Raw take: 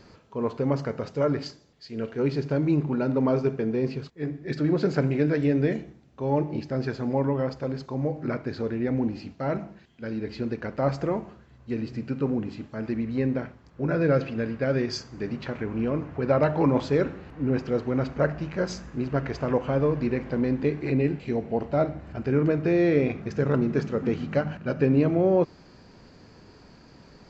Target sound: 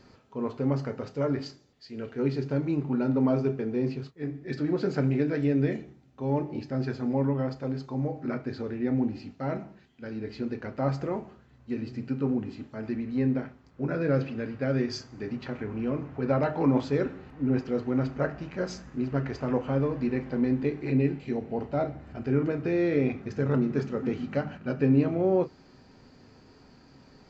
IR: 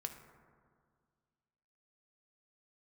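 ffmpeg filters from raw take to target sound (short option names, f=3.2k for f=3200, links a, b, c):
-filter_complex "[1:a]atrim=start_sample=2205,atrim=end_sample=3087,asetrate=79380,aresample=44100[a];[0:a][a]afir=irnorm=-1:irlink=0,volume=4dB"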